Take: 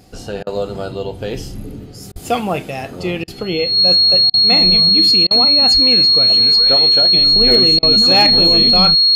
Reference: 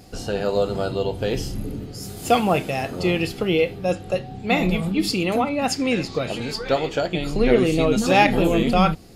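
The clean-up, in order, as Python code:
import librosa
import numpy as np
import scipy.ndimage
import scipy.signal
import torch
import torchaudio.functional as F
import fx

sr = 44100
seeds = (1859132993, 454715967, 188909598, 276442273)

y = fx.fix_declip(x, sr, threshold_db=-3.0)
y = fx.notch(y, sr, hz=4300.0, q=30.0)
y = fx.highpass(y, sr, hz=140.0, slope=24, at=(2.12, 2.24), fade=0.02)
y = fx.highpass(y, sr, hz=140.0, slope=24, at=(5.73, 5.85), fade=0.02)
y = fx.fix_interpolate(y, sr, at_s=(0.43, 2.12, 3.24, 4.3, 5.27, 7.79), length_ms=37.0)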